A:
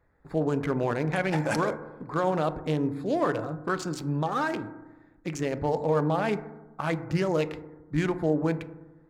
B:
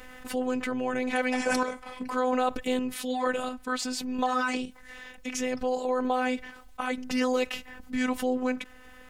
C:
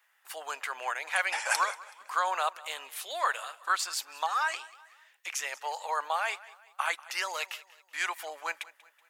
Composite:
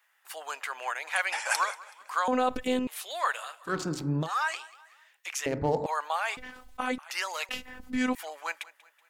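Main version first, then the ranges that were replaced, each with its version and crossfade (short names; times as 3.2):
C
2.28–2.87 from B
3.7–4.25 from A, crossfade 0.10 s
5.46–5.86 from A
6.37–6.98 from B
7.49–8.15 from B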